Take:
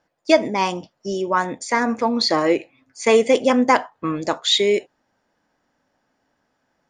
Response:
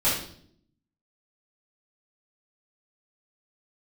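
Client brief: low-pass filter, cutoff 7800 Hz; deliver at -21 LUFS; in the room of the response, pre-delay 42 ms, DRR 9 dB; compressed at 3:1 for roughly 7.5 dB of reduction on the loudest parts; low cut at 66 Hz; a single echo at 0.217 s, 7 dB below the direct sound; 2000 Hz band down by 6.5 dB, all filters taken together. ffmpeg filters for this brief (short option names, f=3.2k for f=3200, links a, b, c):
-filter_complex "[0:a]highpass=66,lowpass=7.8k,equalizer=f=2k:t=o:g=-8,acompressor=threshold=-20dB:ratio=3,aecho=1:1:217:0.447,asplit=2[a][b];[1:a]atrim=start_sample=2205,adelay=42[c];[b][c]afir=irnorm=-1:irlink=0,volume=-22.5dB[d];[a][d]amix=inputs=2:normalize=0,volume=3dB"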